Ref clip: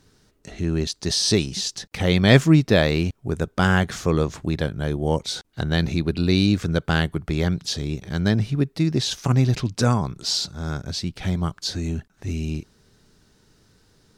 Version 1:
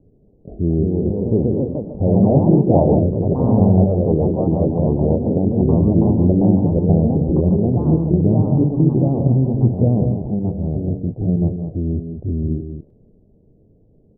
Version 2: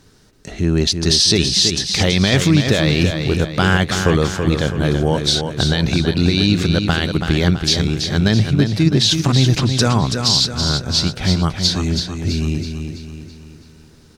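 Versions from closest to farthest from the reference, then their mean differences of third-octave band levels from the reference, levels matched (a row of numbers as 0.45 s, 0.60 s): 2, 1; 6.5 dB, 15.5 dB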